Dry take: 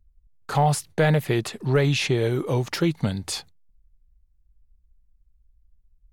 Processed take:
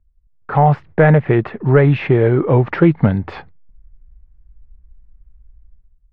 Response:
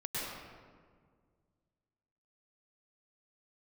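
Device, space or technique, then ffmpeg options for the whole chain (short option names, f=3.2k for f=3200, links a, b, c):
action camera in a waterproof case: -af "lowpass=f=2k:w=0.5412,lowpass=f=2k:w=1.3066,dynaudnorm=f=140:g=7:m=15dB" -ar 44100 -c:a aac -b:a 64k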